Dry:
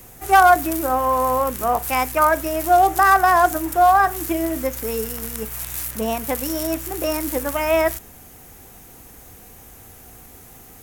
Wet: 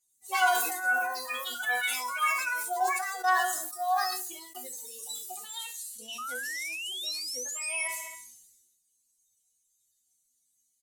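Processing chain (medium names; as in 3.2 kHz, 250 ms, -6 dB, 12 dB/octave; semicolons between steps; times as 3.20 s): expander on every frequency bin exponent 2; frequency weighting ITU-R 468; on a send: feedback delay 68 ms, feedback 51%, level -17.5 dB; on the sum: ever faster or slower copies 97 ms, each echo +6 st, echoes 2; de-hum 56.57 Hz, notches 9; in parallel at +1 dB: compression, threshold -27 dBFS, peak gain reduction 17.5 dB; on the sum: chord resonator B3 fifth, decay 0.3 s; 2.80–4.55 s: expander -34 dBFS; 6.18–7.88 s: painted sound rise 1.2–11 kHz -37 dBFS; decay stretcher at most 45 dB/s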